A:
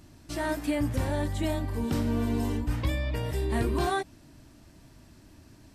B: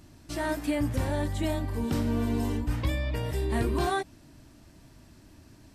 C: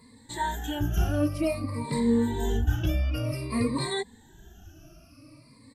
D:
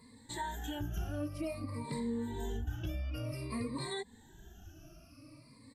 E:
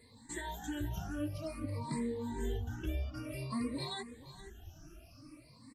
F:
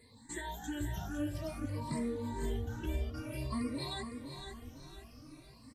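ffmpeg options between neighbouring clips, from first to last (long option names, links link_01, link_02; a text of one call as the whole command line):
ffmpeg -i in.wav -af anull out.wav
ffmpeg -i in.wav -filter_complex "[0:a]afftfilt=real='re*pow(10,22/40*sin(2*PI*(0.97*log(max(b,1)*sr/1024/100)/log(2)-(-0.53)*(pts-256)/sr)))':imag='im*pow(10,22/40*sin(2*PI*(0.97*log(max(b,1)*sr/1024/100)/log(2)-(-0.53)*(pts-256)/sr)))':win_size=1024:overlap=0.75,asplit=2[link_01][link_02];[link_02]adelay=2.5,afreqshift=2[link_03];[link_01][link_03]amix=inputs=2:normalize=1" out.wav
ffmpeg -i in.wav -af "acompressor=threshold=-34dB:ratio=2.5,volume=-4dB" out.wav
ffmpeg -i in.wav -filter_complex "[0:a]aecho=1:1:472:0.188,asplit=2[link_01][link_02];[link_02]afreqshift=2.4[link_03];[link_01][link_03]amix=inputs=2:normalize=1,volume=3dB" out.wav
ffmpeg -i in.wav -af "aecho=1:1:507|1014|1521|2028:0.398|0.147|0.0545|0.0202" out.wav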